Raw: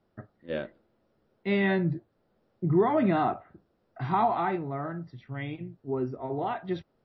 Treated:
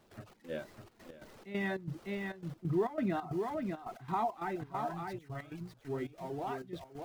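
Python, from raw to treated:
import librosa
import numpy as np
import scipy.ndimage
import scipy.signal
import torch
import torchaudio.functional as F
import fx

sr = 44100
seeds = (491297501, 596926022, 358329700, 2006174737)

p1 = x + 0.5 * 10.0 ** (-40.0 / 20.0) * np.sign(x)
p2 = fx.dereverb_blind(p1, sr, rt60_s=0.78)
p3 = p2 + fx.echo_single(p2, sr, ms=602, db=-4.5, dry=0)
p4 = fx.step_gate(p3, sr, bpm=136, pattern='.xx.xxxx.x.xx', floor_db=-12.0, edge_ms=4.5)
y = p4 * 10.0 ** (-8.0 / 20.0)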